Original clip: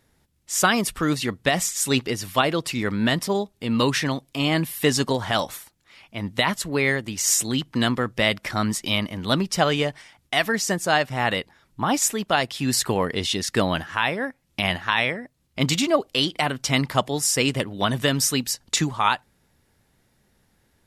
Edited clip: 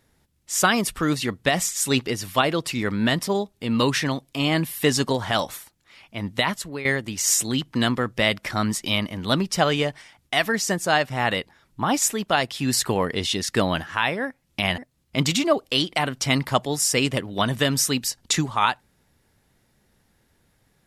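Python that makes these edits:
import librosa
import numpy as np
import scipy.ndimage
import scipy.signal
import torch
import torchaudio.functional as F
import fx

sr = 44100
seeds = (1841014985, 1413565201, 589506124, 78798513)

y = fx.edit(x, sr, fx.fade_out_to(start_s=6.22, length_s=0.63, curve='qsin', floor_db=-13.5),
    fx.cut(start_s=14.78, length_s=0.43), tone=tone)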